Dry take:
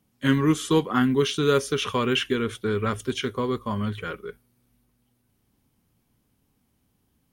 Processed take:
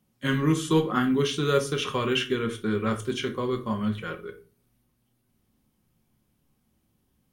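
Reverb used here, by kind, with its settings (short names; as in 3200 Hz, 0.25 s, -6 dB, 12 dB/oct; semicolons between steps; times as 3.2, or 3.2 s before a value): shoebox room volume 250 m³, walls furnished, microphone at 0.96 m; gain -3 dB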